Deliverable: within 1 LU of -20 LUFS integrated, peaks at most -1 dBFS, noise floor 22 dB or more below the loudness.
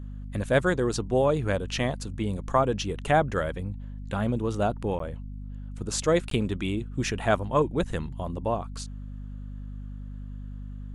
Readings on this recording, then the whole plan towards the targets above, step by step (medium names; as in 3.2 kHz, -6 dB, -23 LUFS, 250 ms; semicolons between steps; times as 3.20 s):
dropouts 2; longest dropout 13 ms; hum 50 Hz; highest harmonic 250 Hz; hum level -35 dBFS; loudness -27.5 LUFS; peak level -9.0 dBFS; loudness target -20.0 LUFS
-> interpolate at 4.99/6.30 s, 13 ms; hum notches 50/100/150/200/250 Hz; trim +7.5 dB